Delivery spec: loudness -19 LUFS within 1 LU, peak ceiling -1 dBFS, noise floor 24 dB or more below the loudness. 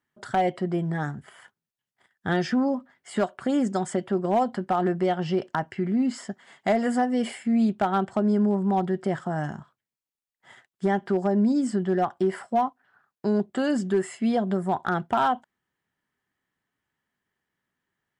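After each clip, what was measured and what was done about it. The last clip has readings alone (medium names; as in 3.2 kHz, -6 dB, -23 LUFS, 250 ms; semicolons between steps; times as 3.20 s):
clipped samples 0.3%; clipping level -15.5 dBFS; loudness -26.0 LUFS; peak level -15.5 dBFS; loudness target -19.0 LUFS
-> clip repair -15.5 dBFS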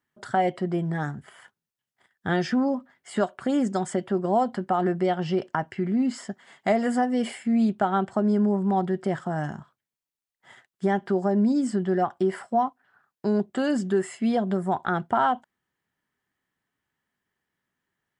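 clipped samples 0.0%; loudness -25.5 LUFS; peak level -10.0 dBFS; loudness target -19.0 LUFS
-> trim +6.5 dB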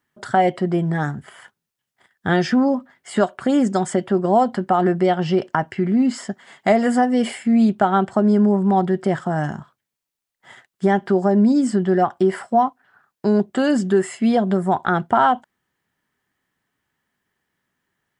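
loudness -19.0 LUFS; peak level -3.5 dBFS; noise floor -83 dBFS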